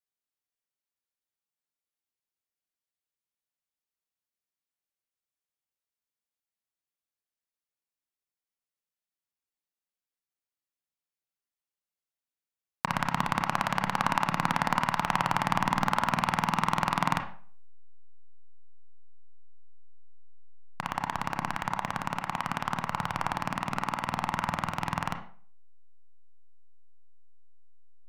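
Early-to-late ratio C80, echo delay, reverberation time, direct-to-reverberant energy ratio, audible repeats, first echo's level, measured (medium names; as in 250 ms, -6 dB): 14.5 dB, no echo, 0.45 s, 5.0 dB, no echo, no echo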